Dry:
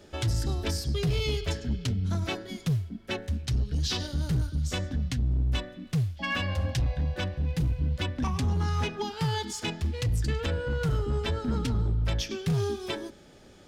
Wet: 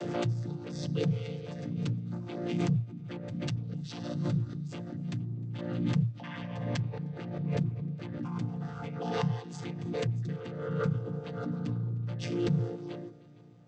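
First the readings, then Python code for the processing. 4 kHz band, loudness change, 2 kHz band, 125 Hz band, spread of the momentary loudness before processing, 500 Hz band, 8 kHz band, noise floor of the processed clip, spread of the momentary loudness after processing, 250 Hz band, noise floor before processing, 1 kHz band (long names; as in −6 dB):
−12.0 dB, −4.5 dB, −9.5 dB, −4.0 dB, 4 LU, −2.5 dB, below −10 dB, −45 dBFS, 9 LU, 0.0 dB, −52 dBFS, −5.5 dB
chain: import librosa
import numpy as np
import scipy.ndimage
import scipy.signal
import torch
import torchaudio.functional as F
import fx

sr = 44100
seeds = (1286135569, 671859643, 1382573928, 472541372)

y = fx.chord_vocoder(x, sr, chord='major triad', root=46)
y = fx.echo_heads(y, sr, ms=153, heads='second and third', feedback_pct=46, wet_db=-21.5)
y = fx.pre_swell(y, sr, db_per_s=35.0)
y = y * librosa.db_to_amplitude(-3.0)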